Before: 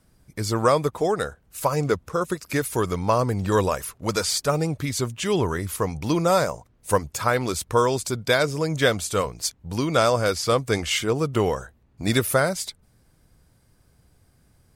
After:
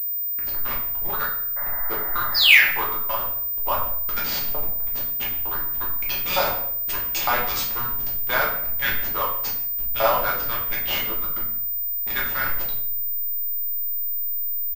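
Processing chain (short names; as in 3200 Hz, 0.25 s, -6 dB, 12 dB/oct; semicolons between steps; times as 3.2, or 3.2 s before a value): 5.95–7.69 resonant high shelf 2000 Hz +8 dB, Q 1.5; sample leveller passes 1; 2.34–2.66 painted sound fall 1200–5300 Hz -13 dBFS; LFO high-pass saw up 1.1 Hz 830–2800 Hz; backlash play -13 dBFS; echo 0.147 s -20.5 dB; shoebox room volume 110 m³, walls mixed, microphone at 1.3 m; 1.56–2.72 painted sound noise 540–2100 Hz -30 dBFS; pulse-width modulation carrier 15000 Hz; gain -8 dB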